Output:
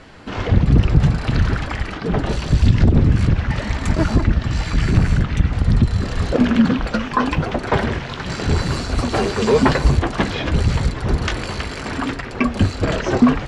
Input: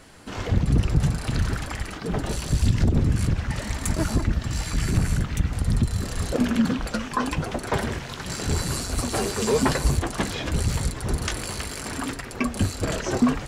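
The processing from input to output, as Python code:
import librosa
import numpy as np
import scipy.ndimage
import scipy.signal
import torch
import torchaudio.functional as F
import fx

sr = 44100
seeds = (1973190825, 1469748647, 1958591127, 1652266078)

y = scipy.signal.sosfilt(scipy.signal.butter(2, 3900.0, 'lowpass', fs=sr, output='sos'), x)
y = fx.dmg_crackle(y, sr, seeds[0], per_s=32.0, level_db=-48.0, at=(6.73, 7.51), fade=0.02)
y = F.gain(torch.from_numpy(y), 7.0).numpy()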